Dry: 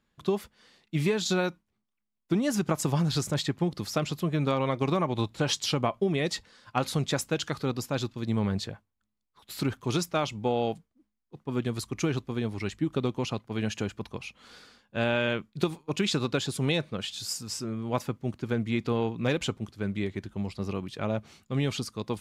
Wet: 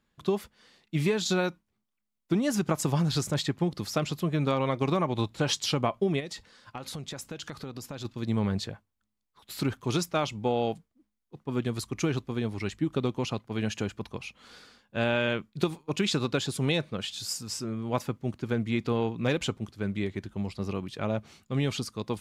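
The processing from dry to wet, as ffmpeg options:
ffmpeg -i in.wav -filter_complex "[0:a]asplit=3[link_01][link_02][link_03];[link_01]afade=type=out:start_time=6.19:duration=0.02[link_04];[link_02]acompressor=threshold=-34dB:ratio=12:attack=3.2:release=140:knee=1:detection=peak,afade=type=in:start_time=6.19:duration=0.02,afade=type=out:start_time=8.04:duration=0.02[link_05];[link_03]afade=type=in:start_time=8.04:duration=0.02[link_06];[link_04][link_05][link_06]amix=inputs=3:normalize=0" out.wav

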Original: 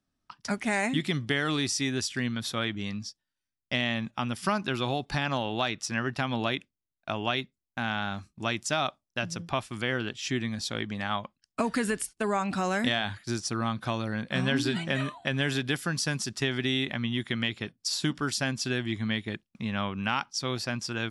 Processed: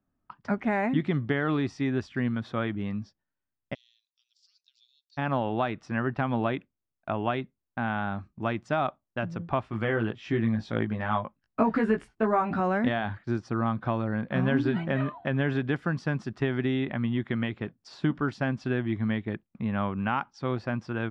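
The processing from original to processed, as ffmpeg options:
ffmpeg -i in.wav -filter_complex "[0:a]asplit=3[link_01][link_02][link_03];[link_01]afade=type=out:start_time=3.73:duration=0.02[link_04];[link_02]asuperpass=centerf=5600:order=8:qfactor=1.6,afade=type=in:start_time=3.73:duration=0.02,afade=type=out:start_time=5.17:duration=0.02[link_05];[link_03]afade=type=in:start_time=5.17:duration=0.02[link_06];[link_04][link_05][link_06]amix=inputs=3:normalize=0,asettb=1/sr,asplit=3[link_07][link_08][link_09];[link_07]atrim=end=9.624[link_10];[link_08]atrim=start=9.62:end=12.6,asetpts=PTS-STARTPTS,afade=type=in:duration=0.004:curve=qsin,afade=type=out:start_time=2.976:duration=0.004:curve=qsin,asplit=2[link_11][link_12];[link_12]adelay=18,volume=-3.5dB[link_13];[link_11][link_13]amix=inputs=2:normalize=0,atrim=end_sample=131418[link_14];[link_09]atrim=start=12.596[link_15];[link_10][link_14]acrossfade=duration=0.004:curve1=hsin:curve2=qsin[link_16];[link_16][link_15]acrossfade=duration=0.004:curve1=qsin:curve2=hsin,lowpass=1400,volume=3dB" out.wav

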